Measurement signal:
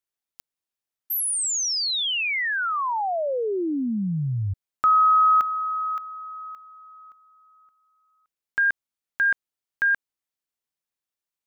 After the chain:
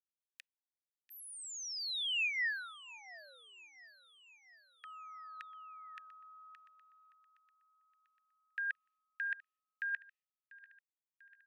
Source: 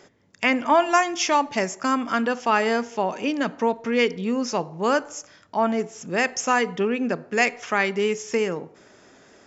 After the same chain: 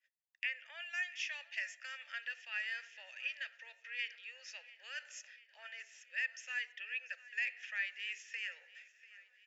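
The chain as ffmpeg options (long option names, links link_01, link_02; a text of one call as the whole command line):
ffmpeg -i in.wav -filter_complex "[0:a]agate=range=-33dB:threshold=-44dB:ratio=3:release=173:detection=rms,areverse,acompressor=threshold=-32dB:ratio=4:attack=46:release=837:knee=6:detection=peak,areverse,asplit=3[link_01][link_02][link_03];[link_01]bandpass=frequency=530:width_type=q:width=8,volume=0dB[link_04];[link_02]bandpass=frequency=1840:width_type=q:width=8,volume=-6dB[link_05];[link_03]bandpass=frequency=2480:width_type=q:width=8,volume=-9dB[link_06];[link_04][link_05][link_06]amix=inputs=3:normalize=0,acrossover=split=850|1800[link_07][link_08][link_09];[link_07]acompressor=threshold=-46dB:ratio=4[link_10];[link_08]acompressor=threshold=-54dB:ratio=4[link_11];[link_09]acompressor=threshold=-50dB:ratio=4[link_12];[link_10][link_11][link_12]amix=inputs=3:normalize=0,acrossover=split=1500[link_13][link_14];[link_13]acrusher=bits=2:mix=0:aa=0.5[link_15];[link_14]aecho=1:1:693|1386|2079|2772|3465:0.112|0.064|0.0365|0.0208|0.0118[link_16];[link_15][link_16]amix=inputs=2:normalize=0,volume=14.5dB" out.wav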